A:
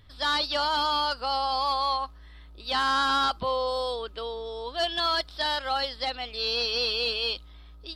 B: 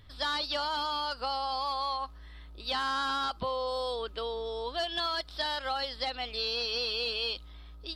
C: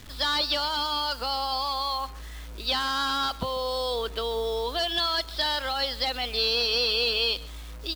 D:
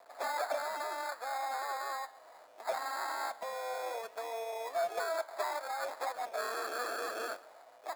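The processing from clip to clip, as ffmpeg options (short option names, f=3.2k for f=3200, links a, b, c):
-af "acompressor=threshold=-29dB:ratio=6"
-filter_complex "[0:a]acrossover=split=260|2400[a][b][c];[b]alimiter=level_in=7.5dB:limit=-24dB:level=0:latency=1:release=37,volume=-7.5dB[d];[a][d][c]amix=inputs=3:normalize=0,acrusher=bits=8:mix=0:aa=0.000001,asplit=2[e][f];[f]adelay=139.9,volume=-20dB,highshelf=f=4k:g=-3.15[g];[e][g]amix=inputs=2:normalize=0,volume=7.5dB"
-af "acrusher=samples=15:mix=1:aa=0.000001,flanger=delay=5.4:depth=7.1:regen=84:speed=0.66:shape=triangular,highpass=f=660:t=q:w=4.9,volume=-9dB"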